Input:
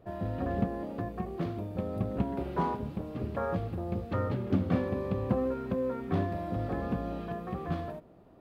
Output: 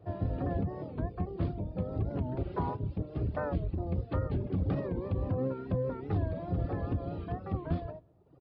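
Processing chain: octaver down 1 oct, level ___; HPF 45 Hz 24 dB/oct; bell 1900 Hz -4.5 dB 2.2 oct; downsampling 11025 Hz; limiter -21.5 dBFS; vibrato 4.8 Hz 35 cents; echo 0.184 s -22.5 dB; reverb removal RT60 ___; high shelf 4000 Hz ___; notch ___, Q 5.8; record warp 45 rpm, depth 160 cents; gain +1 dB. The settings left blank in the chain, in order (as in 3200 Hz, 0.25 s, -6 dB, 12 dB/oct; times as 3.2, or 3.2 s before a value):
+3 dB, 0.95 s, -2.5 dB, 220 Hz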